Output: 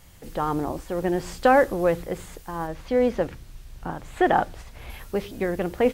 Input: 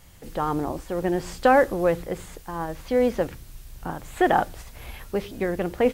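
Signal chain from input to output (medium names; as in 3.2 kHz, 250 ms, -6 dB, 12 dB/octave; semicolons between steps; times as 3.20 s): 2.67–4.90 s: treble shelf 8.1 kHz -11 dB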